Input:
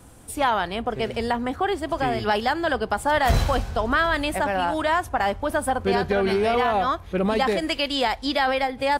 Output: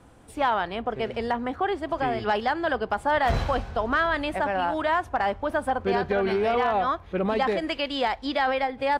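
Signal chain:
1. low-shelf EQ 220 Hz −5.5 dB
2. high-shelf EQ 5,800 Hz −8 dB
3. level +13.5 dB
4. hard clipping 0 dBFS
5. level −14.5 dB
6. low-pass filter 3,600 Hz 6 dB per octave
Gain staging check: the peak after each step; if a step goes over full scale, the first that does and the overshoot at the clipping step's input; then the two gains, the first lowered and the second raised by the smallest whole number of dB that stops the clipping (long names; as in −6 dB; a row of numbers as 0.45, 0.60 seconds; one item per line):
−9.0, −9.5, +4.0, 0.0, −14.5, −14.5 dBFS
step 3, 4.0 dB
step 3 +9.5 dB, step 5 −10.5 dB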